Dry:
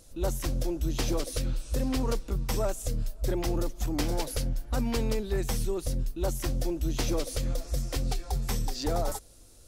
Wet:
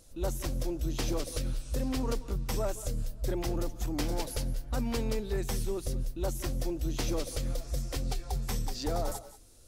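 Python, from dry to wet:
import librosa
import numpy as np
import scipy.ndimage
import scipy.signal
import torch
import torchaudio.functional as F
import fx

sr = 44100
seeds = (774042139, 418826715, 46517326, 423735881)

y = fx.echo_multitap(x, sr, ms=(177, 193), db=(-18.0, -17.5))
y = y * librosa.db_to_amplitude(-3.0)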